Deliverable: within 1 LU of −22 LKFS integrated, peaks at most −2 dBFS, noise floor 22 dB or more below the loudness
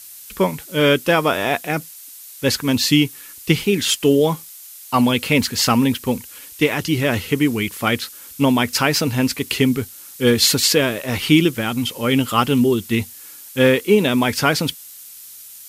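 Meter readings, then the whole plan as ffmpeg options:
background noise floor −39 dBFS; target noise floor −40 dBFS; integrated loudness −18.0 LKFS; sample peak −2.0 dBFS; target loudness −22.0 LKFS
→ -af "afftdn=noise_reduction=6:noise_floor=-39"
-af "volume=-4dB"

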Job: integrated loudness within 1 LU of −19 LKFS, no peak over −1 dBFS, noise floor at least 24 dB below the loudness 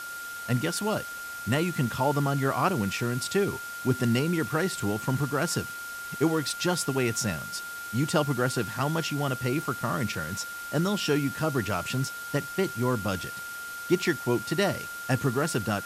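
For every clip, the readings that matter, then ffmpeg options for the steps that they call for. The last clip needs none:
interfering tone 1,400 Hz; level of the tone −36 dBFS; background noise floor −38 dBFS; target noise floor −53 dBFS; integrated loudness −28.5 LKFS; sample peak −11.0 dBFS; target loudness −19.0 LKFS
→ -af "bandreject=frequency=1400:width=30"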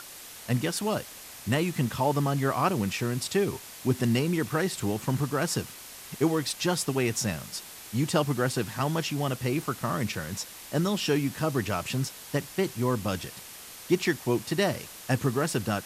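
interfering tone none found; background noise floor −45 dBFS; target noise floor −53 dBFS
→ -af "afftdn=noise_reduction=8:noise_floor=-45"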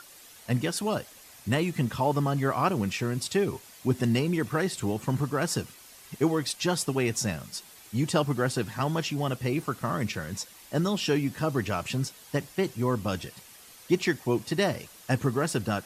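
background noise floor −51 dBFS; target noise floor −53 dBFS
→ -af "afftdn=noise_reduction=6:noise_floor=-51"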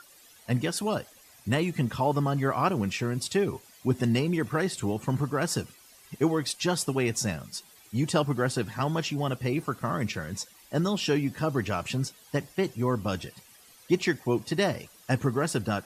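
background noise floor −55 dBFS; integrated loudness −28.5 LKFS; sample peak −11.0 dBFS; target loudness −19.0 LKFS
→ -af "volume=9.5dB"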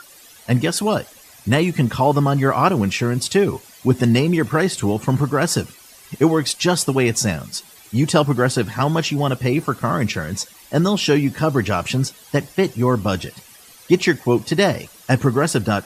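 integrated loudness −19.0 LKFS; sample peak −1.5 dBFS; background noise floor −46 dBFS

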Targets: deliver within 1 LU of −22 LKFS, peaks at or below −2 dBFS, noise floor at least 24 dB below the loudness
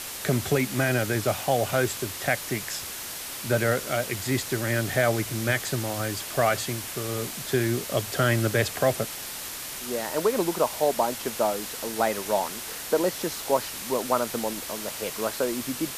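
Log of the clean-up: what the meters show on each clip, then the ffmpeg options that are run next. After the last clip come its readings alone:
background noise floor −36 dBFS; target noise floor −51 dBFS; integrated loudness −26.5 LKFS; sample peak −8.5 dBFS; target loudness −22.0 LKFS
→ -af "afftdn=noise_reduction=15:noise_floor=-36"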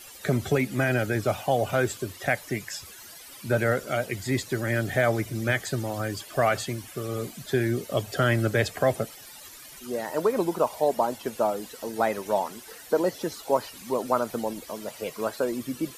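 background noise floor −46 dBFS; target noise floor −52 dBFS
→ -af "afftdn=noise_reduction=6:noise_floor=-46"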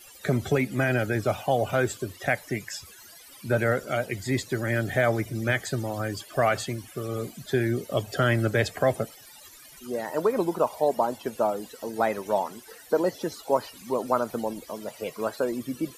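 background noise floor −49 dBFS; target noise floor −52 dBFS
→ -af "afftdn=noise_reduction=6:noise_floor=-49"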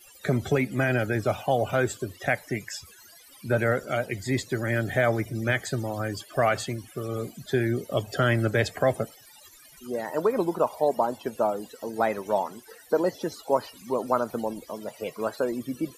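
background noise floor −52 dBFS; integrated loudness −27.5 LKFS; sample peak −9.0 dBFS; target loudness −22.0 LKFS
→ -af "volume=5.5dB"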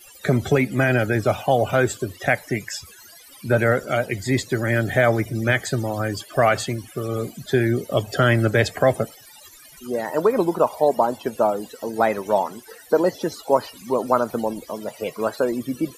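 integrated loudness −22.0 LKFS; sample peak −3.5 dBFS; background noise floor −47 dBFS

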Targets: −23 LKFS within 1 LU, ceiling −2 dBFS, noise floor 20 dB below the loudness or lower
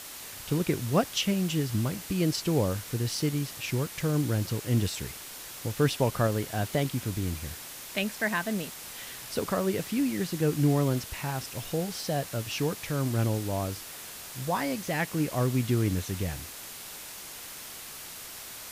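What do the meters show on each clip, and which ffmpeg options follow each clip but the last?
background noise floor −43 dBFS; target noise floor −50 dBFS; integrated loudness −30.0 LKFS; sample peak −11.0 dBFS; target loudness −23.0 LKFS
→ -af "afftdn=noise_reduction=7:noise_floor=-43"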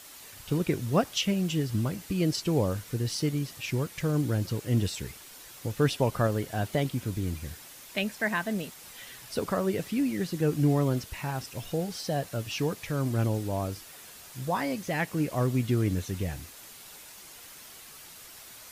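background noise floor −48 dBFS; target noise floor −50 dBFS
→ -af "afftdn=noise_reduction=6:noise_floor=-48"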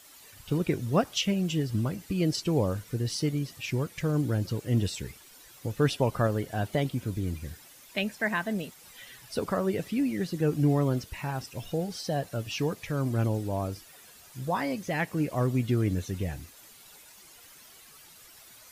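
background noise floor −53 dBFS; integrated loudness −30.0 LKFS; sample peak −11.5 dBFS; target loudness −23.0 LKFS
→ -af "volume=7dB"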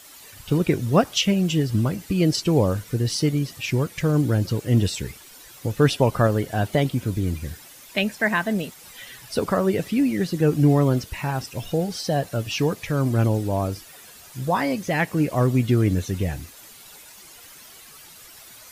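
integrated loudness −23.0 LKFS; sample peak −4.5 dBFS; background noise floor −46 dBFS

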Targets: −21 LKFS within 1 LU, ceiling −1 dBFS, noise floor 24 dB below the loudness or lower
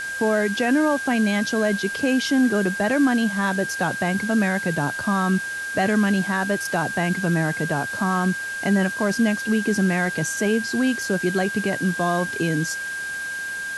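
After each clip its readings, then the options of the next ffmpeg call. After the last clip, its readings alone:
interfering tone 1,600 Hz; level of the tone −27 dBFS; background noise floor −30 dBFS; target noise floor −46 dBFS; integrated loudness −22.0 LKFS; sample peak −9.0 dBFS; target loudness −21.0 LKFS
→ -af "bandreject=frequency=1600:width=30"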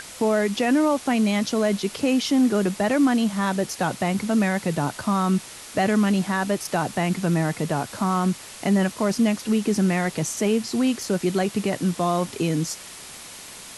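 interfering tone none found; background noise floor −41 dBFS; target noise floor −47 dBFS
→ -af "afftdn=noise_reduction=6:noise_floor=-41"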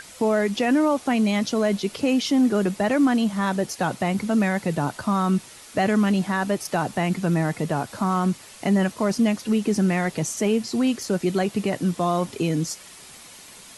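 background noise floor −45 dBFS; target noise floor −47 dBFS
→ -af "afftdn=noise_reduction=6:noise_floor=-45"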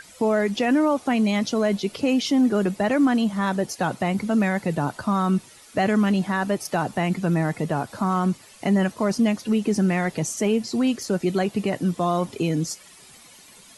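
background noise floor −49 dBFS; integrated loudness −23.0 LKFS; sample peak −10.5 dBFS; target loudness −21.0 LKFS
→ -af "volume=2dB"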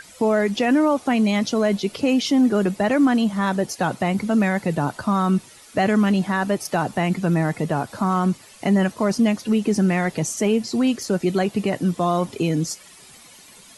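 integrated loudness −21.0 LKFS; sample peak −8.5 dBFS; background noise floor −47 dBFS

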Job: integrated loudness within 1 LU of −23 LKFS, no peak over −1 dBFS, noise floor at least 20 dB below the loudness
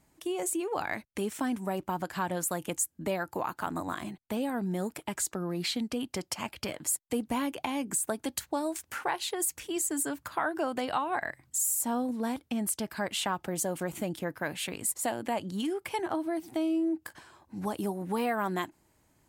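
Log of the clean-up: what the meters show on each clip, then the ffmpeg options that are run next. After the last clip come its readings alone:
integrated loudness −32.5 LKFS; sample peak −17.0 dBFS; target loudness −23.0 LKFS
→ -af "volume=9.5dB"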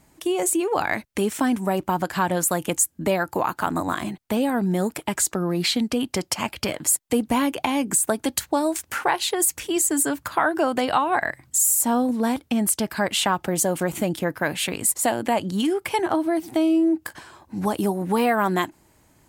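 integrated loudness −23.0 LKFS; sample peak −7.5 dBFS; background noise floor −60 dBFS

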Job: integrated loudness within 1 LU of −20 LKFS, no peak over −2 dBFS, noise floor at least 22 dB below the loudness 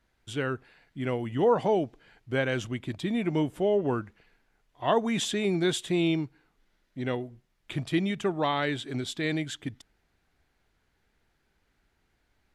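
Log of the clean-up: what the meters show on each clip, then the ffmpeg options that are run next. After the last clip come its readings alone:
integrated loudness −29.0 LKFS; sample peak −12.0 dBFS; target loudness −20.0 LKFS
→ -af "volume=9dB"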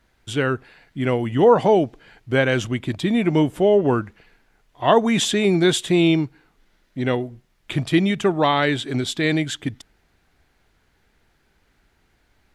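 integrated loudness −20.0 LKFS; sample peak −3.0 dBFS; background noise floor −64 dBFS

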